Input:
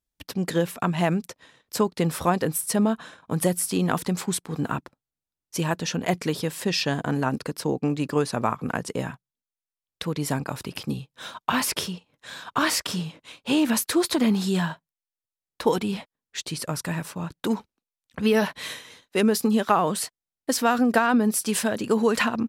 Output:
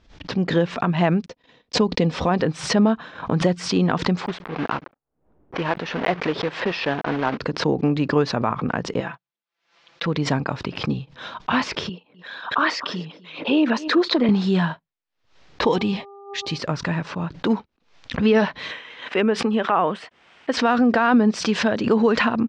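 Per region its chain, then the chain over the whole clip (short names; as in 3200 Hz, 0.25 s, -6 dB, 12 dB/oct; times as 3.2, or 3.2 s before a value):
1.26–2.29 gate -48 dBFS, range -38 dB + bell 1400 Hz -8 dB 0.92 oct + comb 4.1 ms, depth 32%
4.26–7.39 block floating point 3-bit + low-pass opened by the level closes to 440 Hz, open at -24 dBFS + tone controls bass -10 dB, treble -12 dB
9–10.06 HPF 630 Hz 6 dB/oct + air absorption 54 m + comb 5.9 ms, depth 97%
11.89–14.29 formant sharpening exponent 1.5 + BPF 240–7700 Hz + echo 0.252 s -22 dB
15.61–16.57 high shelf 4000 Hz +8 dB + buzz 400 Hz, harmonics 3, -47 dBFS + notch 1400 Hz, Q 5.2
18.71–20.57 HPF 340 Hz 6 dB/oct + band shelf 5200 Hz -10.5 dB 1.1 oct + mismatched tape noise reduction encoder only
whole clip: Bessel low-pass 3300 Hz, order 8; maximiser +12 dB; backwards sustainer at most 120 dB/s; gain -7.5 dB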